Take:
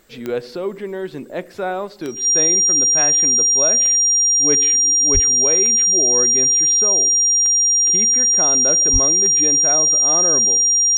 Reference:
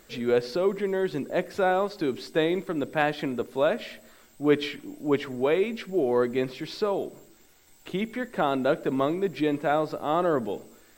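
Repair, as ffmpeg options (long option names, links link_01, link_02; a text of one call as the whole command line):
ffmpeg -i in.wav -filter_complex "[0:a]adeclick=threshold=4,bandreject=frequency=5700:width=30,asplit=3[link_01][link_02][link_03];[link_01]afade=type=out:start_time=5.13:duration=0.02[link_04];[link_02]highpass=frequency=140:width=0.5412,highpass=frequency=140:width=1.3066,afade=type=in:start_time=5.13:duration=0.02,afade=type=out:start_time=5.25:duration=0.02[link_05];[link_03]afade=type=in:start_time=5.25:duration=0.02[link_06];[link_04][link_05][link_06]amix=inputs=3:normalize=0,asplit=3[link_07][link_08][link_09];[link_07]afade=type=out:start_time=8.92:duration=0.02[link_10];[link_08]highpass=frequency=140:width=0.5412,highpass=frequency=140:width=1.3066,afade=type=in:start_time=8.92:duration=0.02,afade=type=out:start_time=9.04:duration=0.02[link_11];[link_09]afade=type=in:start_time=9.04:duration=0.02[link_12];[link_10][link_11][link_12]amix=inputs=3:normalize=0" out.wav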